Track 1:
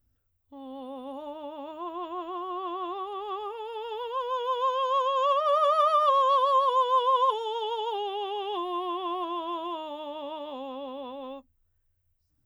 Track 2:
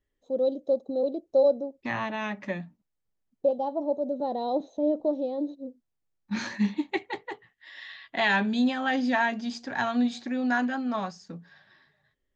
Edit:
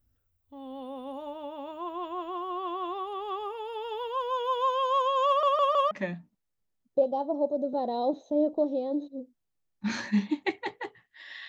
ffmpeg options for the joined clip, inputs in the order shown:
-filter_complex "[0:a]apad=whole_dur=11.48,atrim=end=11.48,asplit=4[s0][s1][s2][s3];[s0]atrim=end=5.432[s4];[s1]atrim=start=5.268:end=5.432[s5];[s2]atrim=start=5.268:end=5.432[s6];[s3]atrim=start=5.268:end=5.432[s7];[1:a]atrim=start=2.378:end=7.95[s8];[s4][s5]acrossfade=d=0.004:c1=hsin:c2=hsin[s9];[s9][s6]acrossfade=d=0.004:c1=hsin:c2=hsin[s10];[s10][s7]acrossfade=d=0.004:c1=hsin:c2=hsin[s11];[s11][s8]acrossfade=d=0.004:c1=hsin:c2=hsin"

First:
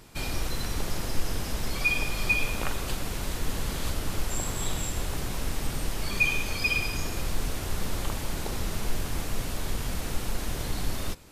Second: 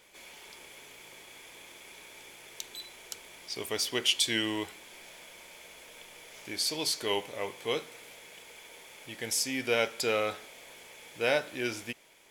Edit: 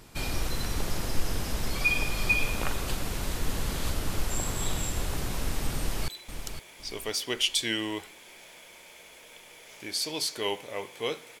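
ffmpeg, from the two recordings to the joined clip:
-filter_complex "[0:a]apad=whole_dur=11.4,atrim=end=11.4,atrim=end=6.082[s0];[1:a]atrim=start=2.728:end=8.05[s1];[s0][s1]acrossfade=d=0.004:c1=hsin:c2=hsin,asplit=2[s2][s3];[s3]afade=t=in:st=5.77:d=0.01,afade=t=out:st=6.08:d=0.01,aecho=0:1:510|1020|1530|2040:0.375837|0.112751|0.0338254|0.0101476[s4];[s2][s4]amix=inputs=2:normalize=0"

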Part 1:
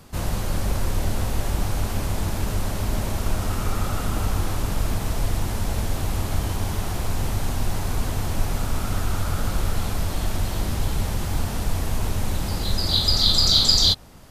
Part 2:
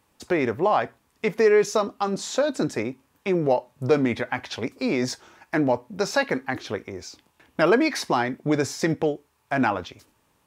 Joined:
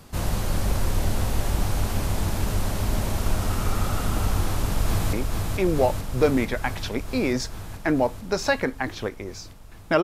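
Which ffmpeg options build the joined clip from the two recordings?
-filter_complex "[0:a]apad=whole_dur=10.03,atrim=end=10.03,atrim=end=5.132[s0];[1:a]atrim=start=2.808:end=7.71[s1];[s0][s1]acrossfade=d=0.004:c1=hsin:c2=hsin,asplit=2[s2][s3];[s3]afade=t=in:st=4.43:d=0.01,afade=t=out:st=5.13:d=0.01,aecho=0:1:440|880|1320|1760|2200|2640|3080|3520|3960|4400|4840|5280:0.630957|0.504766|0.403813|0.32305|0.25844|0.206752|0.165402|0.132321|0.105857|0.0846857|0.0677485|0.0541988[s4];[s2][s4]amix=inputs=2:normalize=0"

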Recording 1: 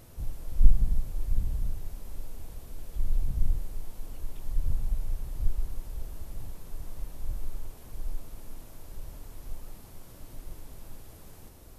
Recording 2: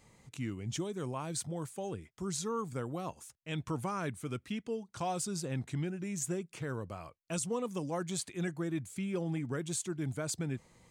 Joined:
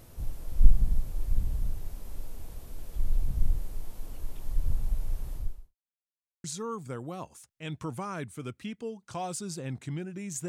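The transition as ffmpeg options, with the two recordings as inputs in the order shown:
-filter_complex "[0:a]apad=whole_dur=10.48,atrim=end=10.48,asplit=2[s0][s1];[s0]atrim=end=5.75,asetpts=PTS-STARTPTS,afade=t=out:st=5.33:d=0.42:c=qua[s2];[s1]atrim=start=5.75:end=6.44,asetpts=PTS-STARTPTS,volume=0[s3];[1:a]atrim=start=2.3:end=6.34,asetpts=PTS-STARTPTS,afade=t=in:d=0.004:c=hsin[s4];[s2][s3][s4]concat=n=3:v=0:a=1"

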